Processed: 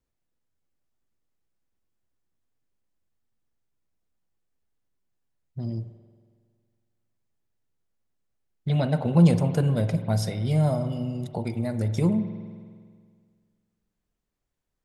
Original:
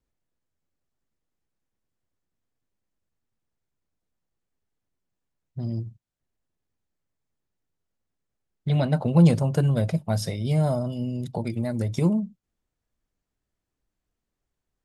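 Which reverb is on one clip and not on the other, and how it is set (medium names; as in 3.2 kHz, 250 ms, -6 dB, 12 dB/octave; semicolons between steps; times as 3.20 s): spring tank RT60 1.9 s, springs 46 ms, chirp 35 ms, DRR 9.5 dB; trim -1 dB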